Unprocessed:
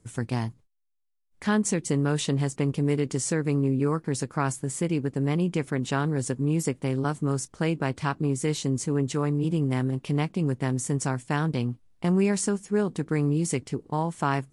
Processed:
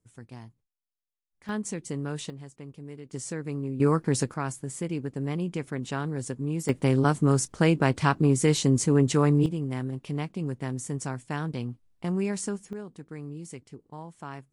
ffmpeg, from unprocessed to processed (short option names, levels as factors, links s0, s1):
-af "asetnsamples=n=441:p=0,asendcmd='1.49 volume volume -8dB;2.3 volume volume -17.5dB;3.13 volume volume -8dB;3.8 volume volume 3dB;4.34 volume volume -5dB;6.69 volume volume 4.5dB;9.46 volume volume -5.5dB;12.73 volume volume -14.5dB',volume=0.158"